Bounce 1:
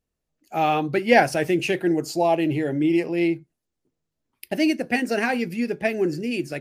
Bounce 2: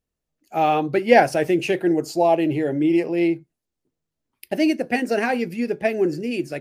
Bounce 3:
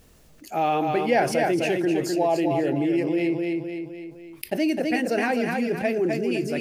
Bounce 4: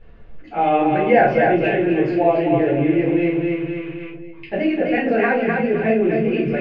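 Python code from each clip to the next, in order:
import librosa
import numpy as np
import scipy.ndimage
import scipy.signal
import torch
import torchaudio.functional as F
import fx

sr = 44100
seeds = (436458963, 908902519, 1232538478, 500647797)

y1 = fx.dynamic_eq(x, sr, hz=530.0, q=0.71, threshold_db=-32.0, ratio=4.0, max_db=5)
y1 = F.gain(torch.from_numpy(y1), -1.5).numpy()
y2 = fx.echo_feedback(y1, sr, ms=256, feedback_pct=28, wet_db=-6.0)
y2 = fx.env_flatten(y2, sr, amount_pct=50)
y2 = F.gain(torch.from_numpy(y2), -8.0).numpy()
y3 = fx.rattle_buzz(y2, sr, strikes_db=-42.0, level_db=-32.0)
y3 = scipy.signal.sosfilt(scipy.signal.butter(4, 2800.0, 'lowpass', fs=sr, output='sos'), y3)
y3 = fx.room_shoebox(y3, sr, seeds[0], volume_m3=150.0, walls='furnished', distance_m=4.1)
y3 = F.gain(torch.from_numpy(y3), -3.5).numpy()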